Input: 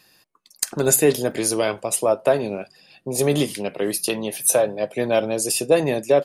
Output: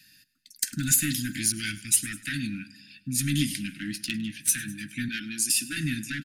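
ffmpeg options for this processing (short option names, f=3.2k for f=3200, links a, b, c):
-filter_complex "[0:a]asettb=1/sr,asplit=3[a][b][c];[a]atrim=end=3.784[d];[b]atrim=start=3.78:end=4.49,asetpts=PTS-STARTPTS,afade=t=in:d=0.004:c=qsin,afade=t=out:st=0.706:d=0.004:c=qsin,adynamicsmooth=sensitivity=1.5:basefreq=2.9k[e];[c]atrim=start=4.486[f];[d][e]acrossfade=d=0.004:c1=hsin:c2=qsin[g];[g][f]acrossfade=d=0.004:c1=qsin:c2=hsin,asettb=1/sr,asplit=3[h][i][j];[h]atrim=end=5.084[k];[i]atrim=start=5.08:end=5.77,asetpts=PTS-STARTPTS,afade=t=in:d=0.004:c=qsin,afade=t=out:st=0.686:d=0.004:c=qsin,highpass=260[l];[j]atrim=start=5.766[m];[k][l]acrossfade=d=0.004:c1=hsin:c2=qsin[n];[n][m]acrossfade=d=0.004:c1=qsin:c2=hsin,asoftclip=type=tanh:threshold=-13.5dB,asuperstop=centerf=660:order=20:qfactor=0.56,aecho=1:1:102|204|306|408|510:0.106|0.0604|0.0344|0.0196|0.0112,asettb=1/sr,asplit=3[o][p][q];[o]atrim=end=1.524[r];[p]atrim=start=1.52:end=2.47,asetpts=PTS-STARTPTS,afade=t=in:d=0.004:c=qsin,afade=t=out:st=0.946:d=0.004:c=qsin,adynamicequalizer=threshold=0.0126:dfrequency=2000:dqfactor=0.7:tfrequency=2000:tqfactor=0.7:attack=5:release=100:ratio=0.375:range=2:mode=boostabove:tftype=highshelf[s];[q]atrim=start=2.466[t];[r][s]acrossfade=d=0.004:c1=hsin:c2=qsin[u];[u][t]acrossfade=d=0.004:c1=qsin:c2=hsin"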